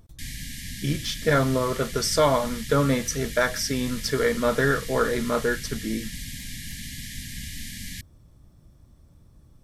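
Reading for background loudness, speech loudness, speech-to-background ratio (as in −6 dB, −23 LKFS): −36.0 LKFS, −24.5 LKFS, 11.5 dB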